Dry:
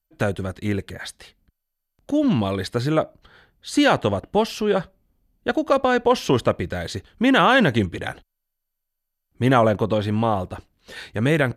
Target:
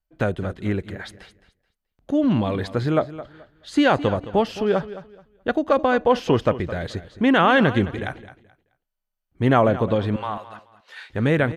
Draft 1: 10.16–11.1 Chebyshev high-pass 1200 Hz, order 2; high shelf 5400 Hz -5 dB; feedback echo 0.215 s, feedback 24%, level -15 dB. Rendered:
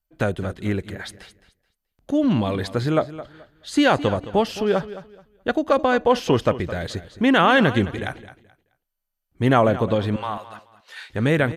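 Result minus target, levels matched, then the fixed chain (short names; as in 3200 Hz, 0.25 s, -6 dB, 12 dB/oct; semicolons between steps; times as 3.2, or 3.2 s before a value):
8000 Hz band +6.0 dB
10.16–11.1 Chebyshev high-pass 1200 Hz, order 2; high shelf 5400 Hz -15 dB; feedback echo 0.215 s, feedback 24%, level -15 dB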